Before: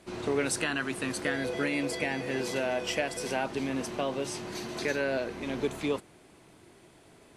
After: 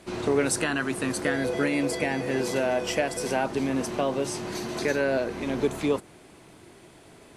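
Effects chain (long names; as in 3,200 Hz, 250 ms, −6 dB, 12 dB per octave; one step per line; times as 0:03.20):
dynamic equaliser 3,000 Hz, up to −5 dB, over −45 dBFS, Q 0.79
level +5.5 dB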